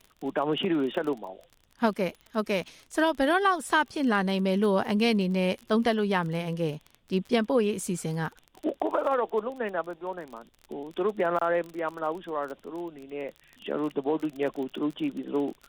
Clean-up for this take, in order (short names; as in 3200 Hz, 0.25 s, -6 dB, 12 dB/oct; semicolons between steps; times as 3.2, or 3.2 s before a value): de-click; expander -52 dBFS, range -21 dB